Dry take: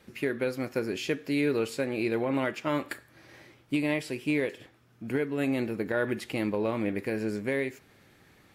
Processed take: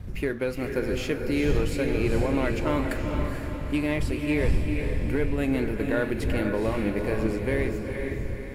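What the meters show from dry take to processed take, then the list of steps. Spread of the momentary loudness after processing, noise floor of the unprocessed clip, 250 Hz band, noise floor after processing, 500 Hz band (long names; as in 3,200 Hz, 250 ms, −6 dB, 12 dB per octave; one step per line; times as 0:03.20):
5 LU, −61 dBFS, +3.5 dB, −34 dBFS, +3.0 dB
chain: wind on the microphone 87 Hz −32 dBFS
parametric band 4,000 Hz −2.5 dB 1.5 octaves
leveller curve on the samples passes 1
feedback delay with all-pass diffusion 454 ms, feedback 50%, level −4.5 dB
level −2 dB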